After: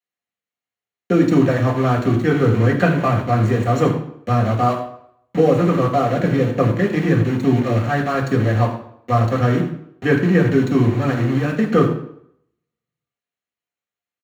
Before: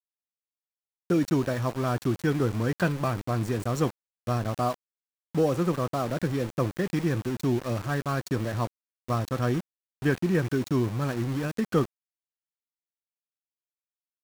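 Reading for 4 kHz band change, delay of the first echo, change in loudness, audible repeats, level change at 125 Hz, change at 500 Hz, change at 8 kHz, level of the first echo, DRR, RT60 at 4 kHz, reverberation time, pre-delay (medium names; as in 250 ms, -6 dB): +6.0 dB, 81 ms, +10.0 dB, 1, +10.5 dB, +10.5 dB, no reading, -12.0 dB, 0.0 dB, 0.55 s, 0.70 s, 3 ms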